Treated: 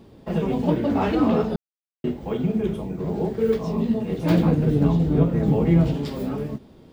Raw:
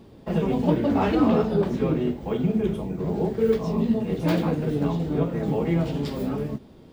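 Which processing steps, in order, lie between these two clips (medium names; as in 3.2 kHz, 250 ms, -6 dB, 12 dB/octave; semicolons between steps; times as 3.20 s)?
1.56–2.04 s: mute; 4.30–5.94 s: bass shelf 230 Hz +10.5 dB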